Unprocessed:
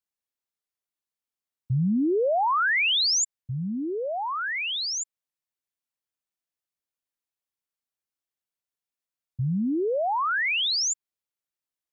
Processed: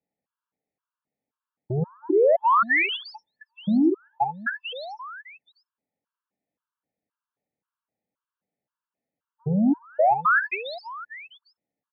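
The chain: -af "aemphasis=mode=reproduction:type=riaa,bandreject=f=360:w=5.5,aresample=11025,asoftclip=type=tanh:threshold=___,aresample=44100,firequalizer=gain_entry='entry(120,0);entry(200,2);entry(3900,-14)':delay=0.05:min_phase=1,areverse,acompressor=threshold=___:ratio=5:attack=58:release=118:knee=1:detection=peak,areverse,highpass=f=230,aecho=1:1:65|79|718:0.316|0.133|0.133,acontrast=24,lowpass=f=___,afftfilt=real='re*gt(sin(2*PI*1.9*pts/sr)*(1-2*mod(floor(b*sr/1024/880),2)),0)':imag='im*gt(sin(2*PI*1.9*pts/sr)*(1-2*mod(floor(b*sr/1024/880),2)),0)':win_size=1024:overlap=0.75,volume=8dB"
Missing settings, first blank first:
-17dB, -32dB, 3200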